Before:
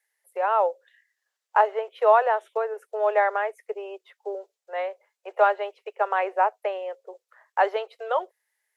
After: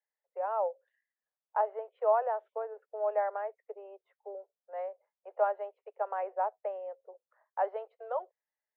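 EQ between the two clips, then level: ladder band-pass 700 Hz, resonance 35%; 0.0 dB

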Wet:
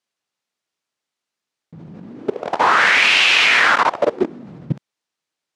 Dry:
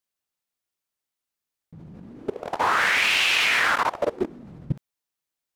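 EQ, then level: BPF 140–6500 Hz; +7.5 dB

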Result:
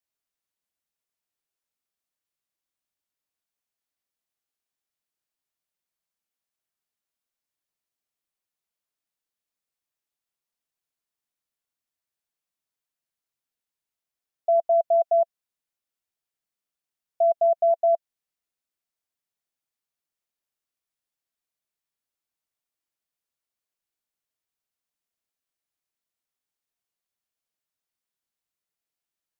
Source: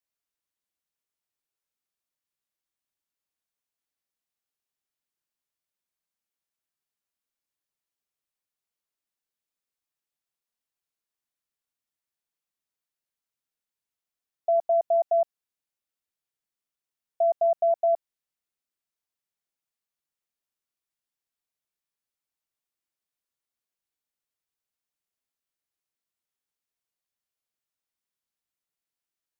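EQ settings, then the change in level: bell 670 Hz +2.5 dB 0.2 oct; 0.0 dB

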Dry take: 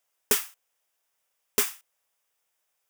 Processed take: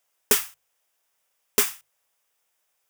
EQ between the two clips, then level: notches 50/100/150 Hz; +3.5 dB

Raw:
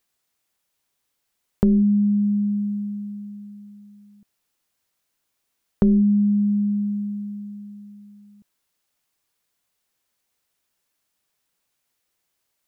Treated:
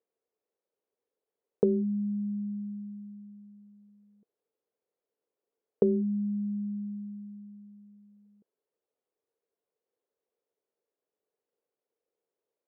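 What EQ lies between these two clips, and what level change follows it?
band-pass 450 Hz, Q 5.5; +7.5 dB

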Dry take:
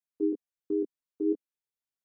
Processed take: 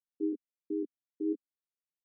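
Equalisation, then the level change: ladder band-pass 300 Hz, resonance 25%; bell 270 Hz +6.5 dB 1.9 oct; 0.0 dB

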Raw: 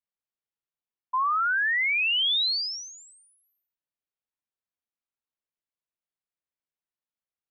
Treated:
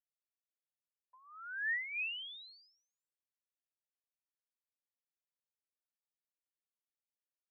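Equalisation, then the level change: vowel filter e; air absorption 390 m; tilt +2 dB/oct; -1.0 dB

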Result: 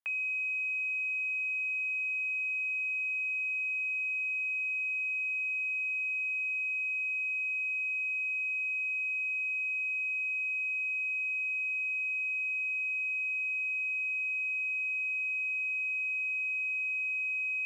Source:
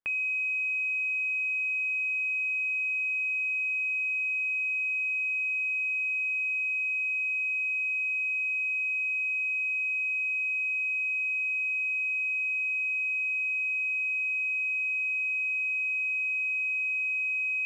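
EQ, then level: HPF 610 Hz 24 dB/oct; -3.5 dB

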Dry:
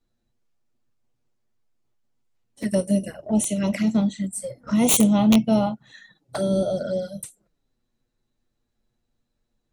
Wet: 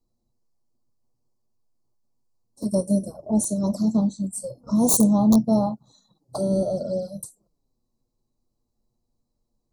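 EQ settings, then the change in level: elliptic band-stop 1100–4400 Hz, stop band 40 dB; 0.0 dB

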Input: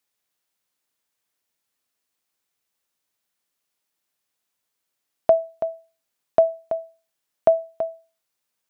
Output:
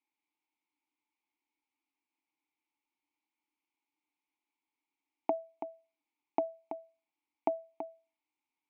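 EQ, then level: vowel filter u; bell 67 Hz -13.5 dB 2.6 oct; +9.0 dB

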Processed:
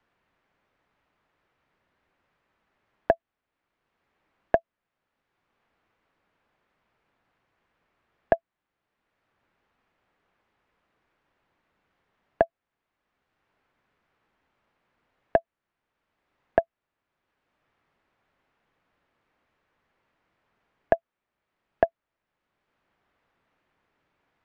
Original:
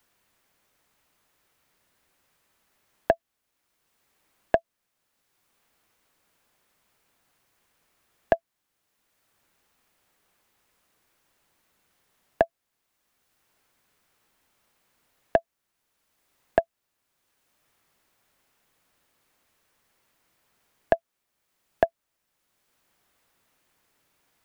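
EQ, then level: LPF 2300 Hz 12 dB/oct; 0.0 dB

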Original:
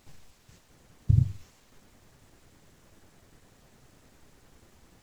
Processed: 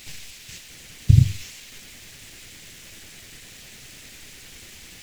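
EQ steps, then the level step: resonant high shelf 1600 Hz +12.5 dB, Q 1.5; +8.0 dB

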